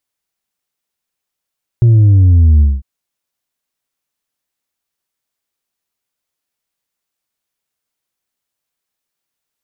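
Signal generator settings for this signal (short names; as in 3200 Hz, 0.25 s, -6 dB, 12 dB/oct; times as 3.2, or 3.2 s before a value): sub drop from 120 Hz, over 1.00 s, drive 3 dB, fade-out 0.21 s, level -5 dB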